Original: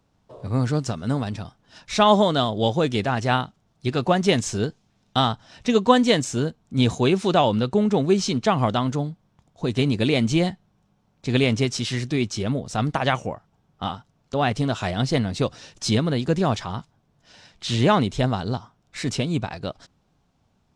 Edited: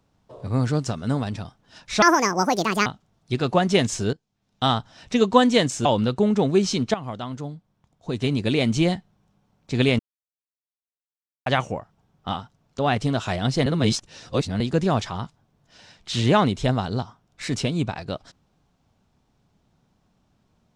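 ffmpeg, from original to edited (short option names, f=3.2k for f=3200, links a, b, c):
-filter_complex "[0:a]asplit=10[a][b][c][d][e][f][g][h][i][j];[a]atrim=end=2.024[k];[b]atrim=start=2.02:end=3.4,asetpts=PTS-STARTPTS,asetrate=72324,aresample=44100[l];[c]atrim=start=3.396:end=4.67,asetpts=PTS-STARTPTS,afade=t=out:st=1.27:d=0.004:c=hsin:silence=0.125893[m];[d]atrim=start=4.67:end=6.392,asetpts=PTS-STARTPTS,afade=t=in:d=0.57:c=qua:silence=0.125893[n];[e]atrim=start=7.398:end=8.49,asetpts=PTS-STARTPTS,afade=t=out:st=1.088:d=0.004:c=hsin:silence=0.211349[o];[f]atrim=start=8.49:end=11.54,asetpts=PTS-STARTPTS,afade=t=in:d=1.89:silence=0.211349,afade=t=out:st=3.046:d=0.004:c=hsin[p];[g]atrim=start=11.54:end=13.01,asetpts=PTS-STARTPTS,volume=0[q];[h]atrim=start=13.01:end=15.212,asetpts=PTS-STARTPTS,afade=t=in:d=0.004:c=hsin[r];[i]atrim=start=15.208:end=16.152,asetpts=PTS-STARTPTS,areverse[s];[j]atrim=start=16.148[t];[k][l]acrossfade=d=0.004:c1=hsin:c2=hsin[u];[m][n]concat=n=2:v=0:a=1[v];[u][v]acrossfade=d=0.004:c1=hsin:c2=hsin[w];[o][p][q][r]concat=n=4:v=0:a=1[x];[w][x]acrossfade=d=0.004:c1=hsin:c2=hsin[y];[y][s]acrossfade=d=0.004:c1=hsin:c2=hsin[z];[z][t]acrossfade=d=0.004:c1=hsin:c2=hsin"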